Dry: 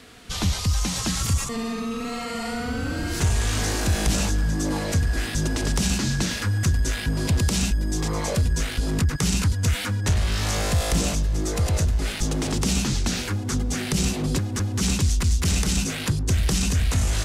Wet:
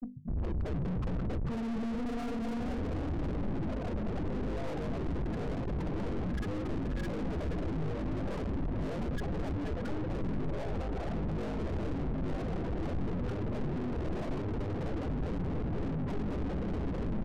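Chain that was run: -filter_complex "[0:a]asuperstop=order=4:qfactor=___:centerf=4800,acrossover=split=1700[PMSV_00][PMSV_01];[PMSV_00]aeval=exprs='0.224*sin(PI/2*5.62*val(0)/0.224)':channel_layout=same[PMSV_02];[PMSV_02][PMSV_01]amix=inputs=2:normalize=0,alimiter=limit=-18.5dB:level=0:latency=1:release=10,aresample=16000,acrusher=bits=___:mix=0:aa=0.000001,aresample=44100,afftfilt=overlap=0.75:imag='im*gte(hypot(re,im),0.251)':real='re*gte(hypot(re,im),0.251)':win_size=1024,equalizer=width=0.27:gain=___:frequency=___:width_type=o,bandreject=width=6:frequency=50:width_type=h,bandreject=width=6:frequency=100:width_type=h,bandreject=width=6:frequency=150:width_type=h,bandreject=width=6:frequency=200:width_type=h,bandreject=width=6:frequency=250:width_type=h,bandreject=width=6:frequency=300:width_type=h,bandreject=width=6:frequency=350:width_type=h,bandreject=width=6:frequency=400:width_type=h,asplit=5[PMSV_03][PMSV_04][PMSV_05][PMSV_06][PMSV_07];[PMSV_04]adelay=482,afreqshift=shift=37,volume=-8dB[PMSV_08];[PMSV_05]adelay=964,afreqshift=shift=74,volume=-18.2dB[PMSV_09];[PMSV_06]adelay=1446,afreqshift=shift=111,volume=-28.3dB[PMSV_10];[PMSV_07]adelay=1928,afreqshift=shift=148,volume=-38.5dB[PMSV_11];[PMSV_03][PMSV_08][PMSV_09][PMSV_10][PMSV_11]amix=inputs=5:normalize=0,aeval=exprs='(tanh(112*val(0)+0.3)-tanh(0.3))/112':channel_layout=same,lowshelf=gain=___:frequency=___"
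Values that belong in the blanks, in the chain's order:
1.9, 6, -5.5, 110, 10.5, 420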